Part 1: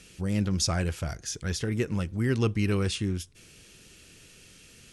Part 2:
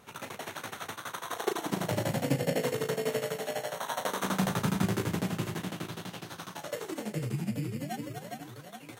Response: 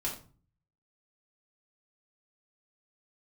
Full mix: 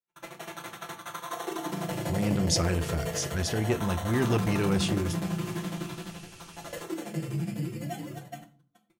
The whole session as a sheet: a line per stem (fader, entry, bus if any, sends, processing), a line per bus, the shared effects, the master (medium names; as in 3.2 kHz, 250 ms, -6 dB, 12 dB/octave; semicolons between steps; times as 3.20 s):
0.0 dB, 1.90 s, send -11.5 dB, none
-7.0 dB, 0.00 s, send -4 dB, gate -40 dBFS, range -46 dB; comb 5.9 ms, depth 96%; peak limiter -19 dBFS, peak gain reduction 7 dB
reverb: on, RT60 0.40 s, pre-delay 3 ms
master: transformer saturation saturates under 420 Hz